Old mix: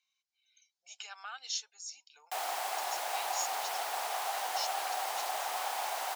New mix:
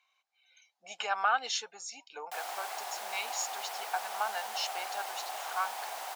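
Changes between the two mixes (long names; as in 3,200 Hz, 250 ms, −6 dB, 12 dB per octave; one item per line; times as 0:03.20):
speech: remove resonant band-pass 5,700 Hz, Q 1.5
background −4.0 dB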